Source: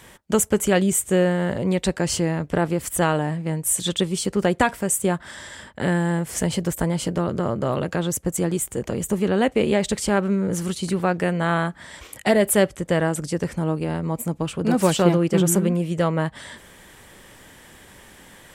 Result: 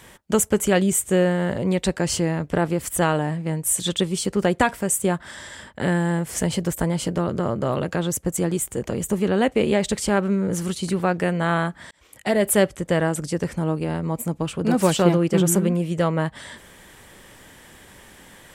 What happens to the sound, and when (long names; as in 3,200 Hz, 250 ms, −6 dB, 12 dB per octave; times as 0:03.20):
0:11.91–0:12.50: fade in linear